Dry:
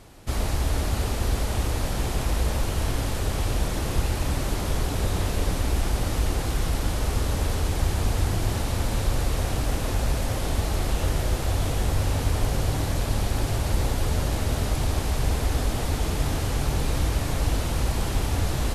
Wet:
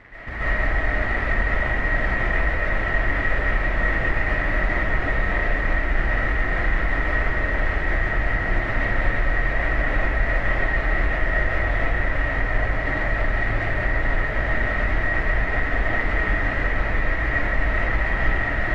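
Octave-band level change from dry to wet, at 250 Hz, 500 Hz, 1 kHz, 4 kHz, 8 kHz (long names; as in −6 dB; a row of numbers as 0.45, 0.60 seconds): −0.5 dB, +3.5 dB, +4.5 dB, −6.0 dB, below −20 dB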